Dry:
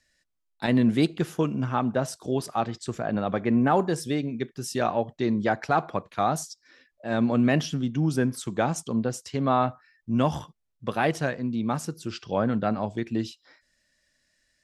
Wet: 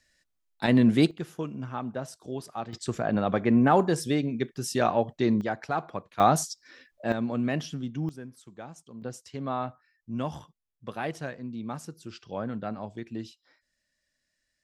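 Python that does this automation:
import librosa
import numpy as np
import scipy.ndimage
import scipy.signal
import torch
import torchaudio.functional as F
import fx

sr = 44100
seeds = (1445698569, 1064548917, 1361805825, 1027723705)

y = fx.gain(x, sr, db=fx.steps((0.0, 1.0), (1.11, -8.5), (2.73, 1.0), (5.41, -6.0), (6.2, 4.0), (7.12, -6.5), (8.09, -18.0), (9.02, -8.5)))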